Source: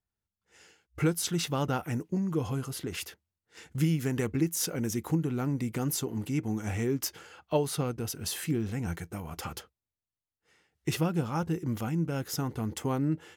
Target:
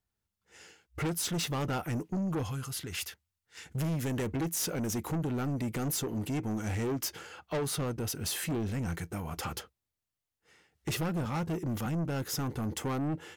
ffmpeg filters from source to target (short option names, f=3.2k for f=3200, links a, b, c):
-filter_complex "[0:a]asettb=1/sr,asplit=3[a][b][c];[a]atrim=end=2.434[d];[b]atrim=start=2.43:end=3.66,asetpts=PTS-STARTPTS,afade=t=in:d=0.004:c=qsin,afade=t=out:st=1.226:d=0.004:c=qsin,equalizer=f=340:t=o:w=2.5:g=-11[e];[c]atrim=start=3.656[f];[d][e]acrossfade=d=0.004:c1=hsin:c2=qsin[g];[g][f]acrossfade=d=0.004:c1=qsin:c2=hsin,asettb=1/sr,asplit=3[h][i][j];[h]atrim=end=11.254[k];[i]atrim=start=11.25:end=11.86,asetpts=PTS-STARTPTS,afade=t=in:d=0.004:c=qsin,afade=t=out:st=0.606:d=0.004:c=qsin,highpass=f=73:w=0.5412,highpass=f=73:w=1.3066[l];[j]atrim=start=11.856[m];[k][l]acrossfade=d=0.004:c1=hsin:c2=qsin[n];[n][m]acrossfade=d=0.004:c1=qsin:c2=hsin,asoftclip=type=tanh:threshold=-32dB,volume=3.5dB"